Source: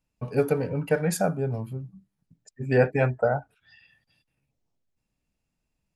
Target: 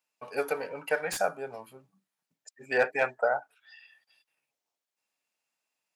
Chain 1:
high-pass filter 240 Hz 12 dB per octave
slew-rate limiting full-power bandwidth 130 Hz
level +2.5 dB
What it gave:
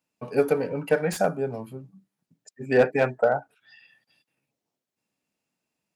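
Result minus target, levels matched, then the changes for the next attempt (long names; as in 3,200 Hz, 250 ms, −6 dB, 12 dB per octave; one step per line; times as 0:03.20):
250 Hz band +9.5 dB
change: high-pass filter 750 Hz 12 dB per octave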